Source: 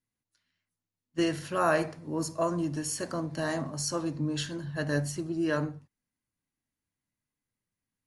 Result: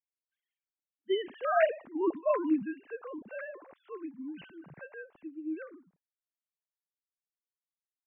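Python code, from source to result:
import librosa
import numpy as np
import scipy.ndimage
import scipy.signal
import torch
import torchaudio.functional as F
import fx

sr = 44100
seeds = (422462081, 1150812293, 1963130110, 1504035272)

y = fx.sine_speech(x, sr)
y = fx.doppler_pass(y, sr, speed_mps=25, closest_m=12.0, pass_at_s=2.01)
y = y * librosa.db_to_amplitude(3.0)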